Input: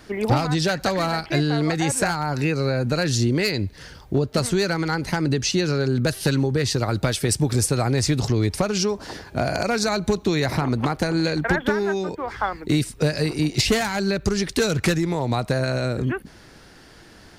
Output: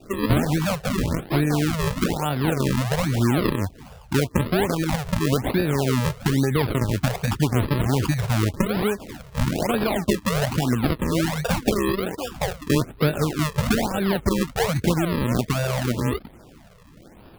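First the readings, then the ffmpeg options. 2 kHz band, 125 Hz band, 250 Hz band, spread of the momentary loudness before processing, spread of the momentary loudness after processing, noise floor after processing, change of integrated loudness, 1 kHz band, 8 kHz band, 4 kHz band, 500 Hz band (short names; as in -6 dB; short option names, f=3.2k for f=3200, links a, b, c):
-3.0 dB, +0.5 dB, +0.5 dB, 5 LU, 4 LU, -48 dBFS, -0.5 dB, -1.0 dB, -5.0 dB, -4.0 dB, -1.5 dB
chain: -af "highshelf=f=9.5k:g=-11.5,acrusher=samples=41:mix=1:aa=0.000001:lfo=1:lforange=41:lforate=1.2,equalizer=f=240:w=3.7:g=2.5,afftfilt=real='re*(1-between(b*sr/1024,270*pow(7500/270,0.5+0.5*sin(2*PI*0.94*pts/sr))/1.41,270*pow(7500/270,0.5+0.5*sin(2*PI*0.94*pts/sr))*1.41))':imag='im*(1-between(b*sr/1024,270*pow(7500/270,0.5+0.5*sin(2*PI*0.94*pts/sr))/1.41,270*pow(7500/270,0.5+0.5*sin(2*PI*0.94*pts/sr))*1.41))':win_size=1024:overlap=0.75"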